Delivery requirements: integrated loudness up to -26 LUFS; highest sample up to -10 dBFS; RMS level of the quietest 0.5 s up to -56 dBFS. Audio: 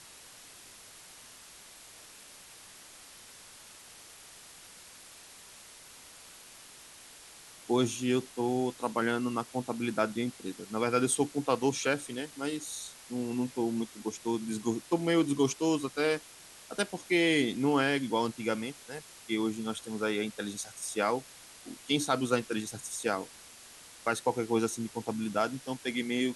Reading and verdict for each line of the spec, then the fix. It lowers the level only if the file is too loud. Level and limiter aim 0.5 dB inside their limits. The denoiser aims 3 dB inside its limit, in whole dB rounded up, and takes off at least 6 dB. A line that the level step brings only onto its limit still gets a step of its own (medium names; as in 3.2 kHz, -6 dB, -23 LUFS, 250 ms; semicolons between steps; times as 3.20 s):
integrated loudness -31.5 LUFS: pass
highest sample -12.5 dBFS: pass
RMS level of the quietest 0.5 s -52 dBFS: fail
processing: noise reduction 7 dB, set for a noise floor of -52 dBFS